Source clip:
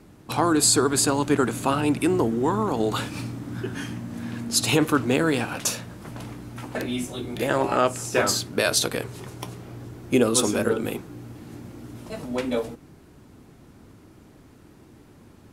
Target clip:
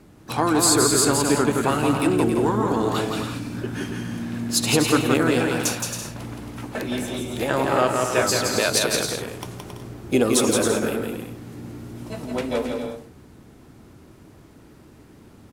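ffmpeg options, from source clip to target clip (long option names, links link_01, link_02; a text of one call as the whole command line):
ffmpeg -i in.wav -filter_complex "[0:a]aecho=1:1:170|272|333.2|369.9|392:0.631|0.398|0.251|0.158|0.1,asplit=2[link_01][link_02];[link_02]asetrate=66075,aresample=44100,atempo=0.66742,volume=-16dB[link_03];[link_01][link_03]amix=inputs=2:normalize=0" out.wav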